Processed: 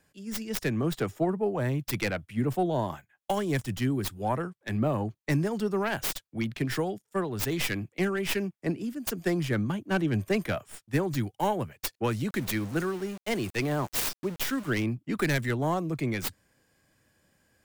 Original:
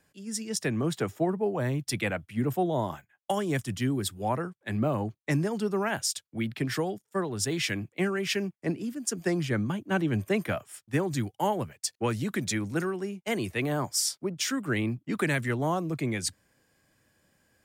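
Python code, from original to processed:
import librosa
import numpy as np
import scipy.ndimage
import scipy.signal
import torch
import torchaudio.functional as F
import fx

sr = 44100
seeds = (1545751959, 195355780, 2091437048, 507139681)

y = fx.tracing_dist(x, sr, depth_ms=0.31)
y = fx.low_shelf(y, sr, hz=69.0, db=3.0)
y = fx.sample_gate(y, sr, floor_db=-40.0, at=(12.29, 14.83), fade=0.02)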